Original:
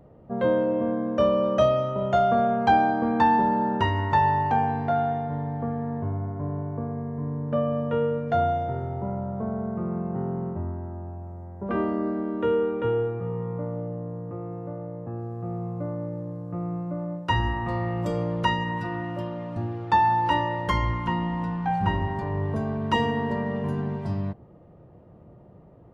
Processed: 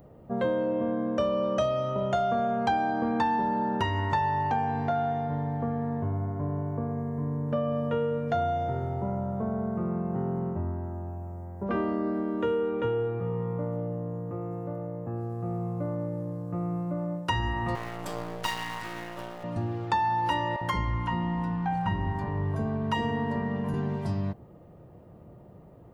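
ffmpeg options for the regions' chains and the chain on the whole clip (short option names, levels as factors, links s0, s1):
-filter_complex "[0:a]asettb=1/sr,asplit=3[s0][s1][s2];[s0]atrim=end=17.754[s3];[s1]atrim=start=17.75:end=19.44,asetpts=PTS-STARTPTS,afade=t=in:d=0.004:c=qsin,afade=t=out:st=1.686:d=0.004:c=qsin,aeval=exprs='max(val(0),0)':c=same,lowshelf=f=360:g=-9.5[s4];[s2]atrim=start=19.436[s5];[s3][s4]acrossfade=d=0.004:c1=hsin:c2=qsin[s6];[s6][s5]acrossfade=d=0.004:c1=qsin:c2=hsin,asettb=1/sr,asplit=3[s7][s8][s9];[s7]atrim=end=20.564[s10];[s8]atrim=start=20.56:end=23.74,asetpts=PTS-STARTPTS,afade=t=in:d=0.004:c=qsin,afade=t=out:st=3.176:d=0.004:c=qsin,highshelf=f=2800:g=-8.5,acrossover=split=520[s11][s12];[s11]adelay=50[s13];[s13][s12]amix=inputs=2:normalize=0,atrim=end_sample=140238[s14];[s9]atrim=start=23.736[s15];[s10][s14]acrossfade=d=0.004:c1=hsin:c2=qsin[s16];[s16][s15]acrossfade=d=0.004:c1=qsin:c2=hsin,aemphasis=mode=production:type=50kf,acompressor=threshold=0.0562:ratio=3"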